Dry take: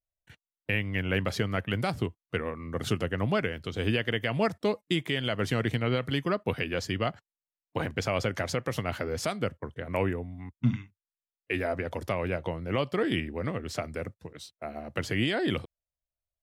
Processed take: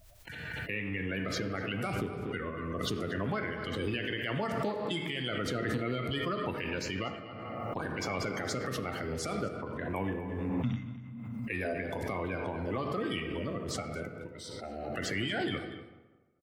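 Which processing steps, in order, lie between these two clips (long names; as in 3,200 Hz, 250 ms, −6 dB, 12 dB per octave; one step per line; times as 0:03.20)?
spectral magnitudes quantised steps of 30 dB
slap from a distant wall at 41 metres, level −14 dB
on a send at −6 dB: convolution reverb RT60 1.3 s, pre-delay 7 ms
on the sum: brickwall limiter −18.5 dBFS, peak gain reduction 5.5 dB
background raised ahead of every attack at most 23 dB per second
level −5 dB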